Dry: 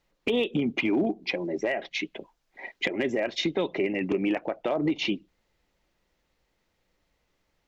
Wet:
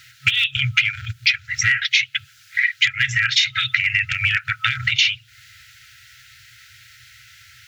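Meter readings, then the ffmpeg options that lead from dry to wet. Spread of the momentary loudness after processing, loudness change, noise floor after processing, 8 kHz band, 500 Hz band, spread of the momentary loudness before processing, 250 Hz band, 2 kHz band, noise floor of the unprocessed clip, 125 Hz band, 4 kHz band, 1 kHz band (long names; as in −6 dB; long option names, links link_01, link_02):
5 LU, +10.0 dB, −51 dBFS, can't be measured, below −40 dB, 8 LU, below −15 dB, +16.5 dB, −75 dBFS, +11.0 dB, +16.0 dB, +3.5 dB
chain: -af "apsyclip=25dB,afftfilt=real='re*(1-between(b*sr/4096,130,1300))':imag='im*(1-between(b*sr/4096,130,1300))':win_size=4096:overlap=0.75,acompressor=threshold=-23dB:ratio=5,highpass=frequency=100:width=0.5412,highpass=frequency=100:width=1.3066,volume=6.5dB"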